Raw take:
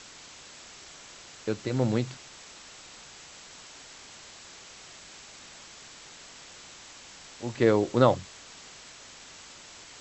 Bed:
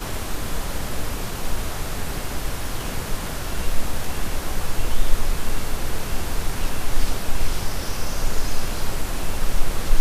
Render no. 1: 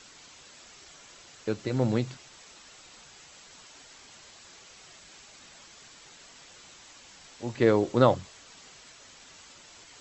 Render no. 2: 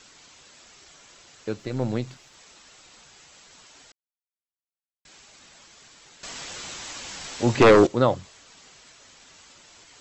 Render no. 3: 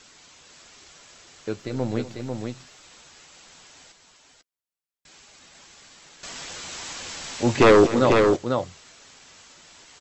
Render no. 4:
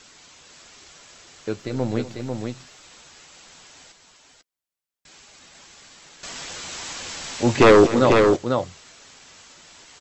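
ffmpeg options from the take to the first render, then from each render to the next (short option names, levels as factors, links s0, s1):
-af "afftdn=nr=6:nf=-49"
-filter_complex "[0:a]asettb=1/sr,asplit=3[s0][s1][s2];[s0]atrim=end=1.584[s3];[s1]atrim=start=1.58:end=2.35,asetpts=PTS-STARTPTS,afade=t=in:d=0.004:c=qsin,afade=t=out:st=0.766:d=0.004:c=qsin,aeval=exprs='if(lt(val(0),0),0.708*val(0),val(0))':c=same[s4];[s2]atrim=start=2.346[s5];[s3][s4]acrossfade=d=0.004:c1=hsin:c2=qsin[s6];[s6][s5]acrossfade=d=0.004:c1=qsin:c2=hsin,asettb=1/sr,asplit=3[s7][s8][s9];[s7]atrim=end=6.234[s10];[s8]atrim=start=6.23:end=7.87,asetpts=PTS-STARTPTS,afade=t=in:d=0.004:c=qsin,afade=t=out:st=1.636:d=0.004:c=qsin,aeval=exprs='0.376*sin(PI/2*3.16*val(0)/0.376)':c=same[s11];[s9]atrim=start=7.866[s12];[s10][s11]acrossfade=d=0.004:c1=hsin:c2=qsin[s13];[s13][s12]acrossfade=d=0.004:c1=qsin:c2=hsin,asplit=3[s14][s15][s16];[s14]atrim=end=3.92,asetpts=PTS-STARTPTS,afade=t=out:st=3.916:d=0.004:c=hsin[s17];[s15]atrim=start=3.92:end=5.05,asetpts=PTS-STARTPTS,volume=0[s18];[s16]atrim=start=5.05,asetpts=PTS-STARTPTS,afade=t=in:d=0.004:c=hsin[s19];[s17][s18][s19]concat=n=3:v=0:a=1"
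-filter_complex "[0:a]asplit=2[s0][s1];[s1]adelay=12,volume=0.211[s2];[s0][s2]amix=inputs=2:normalize=0,aecho=1:1:243|495:0.158|0.596"
-af "volume=1.26"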